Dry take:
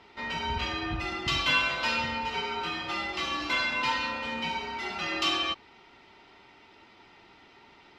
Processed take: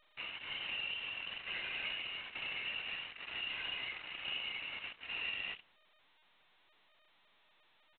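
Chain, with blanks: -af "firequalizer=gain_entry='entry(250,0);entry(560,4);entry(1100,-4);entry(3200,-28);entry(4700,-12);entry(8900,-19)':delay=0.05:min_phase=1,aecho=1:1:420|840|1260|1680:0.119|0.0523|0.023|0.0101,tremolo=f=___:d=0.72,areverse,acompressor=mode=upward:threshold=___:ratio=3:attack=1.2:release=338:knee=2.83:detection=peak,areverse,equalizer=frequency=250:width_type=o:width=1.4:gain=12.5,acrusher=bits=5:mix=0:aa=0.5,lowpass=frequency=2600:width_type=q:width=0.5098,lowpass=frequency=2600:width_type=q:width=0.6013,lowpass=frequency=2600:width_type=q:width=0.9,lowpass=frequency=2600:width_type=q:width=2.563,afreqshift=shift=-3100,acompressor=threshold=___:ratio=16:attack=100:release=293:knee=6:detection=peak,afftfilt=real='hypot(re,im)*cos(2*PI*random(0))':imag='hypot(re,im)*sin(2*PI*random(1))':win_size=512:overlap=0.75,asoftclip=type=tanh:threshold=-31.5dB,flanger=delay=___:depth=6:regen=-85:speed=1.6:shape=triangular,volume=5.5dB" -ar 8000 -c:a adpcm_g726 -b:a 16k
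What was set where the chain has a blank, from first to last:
1.1, -51dB, -35dB, 4.7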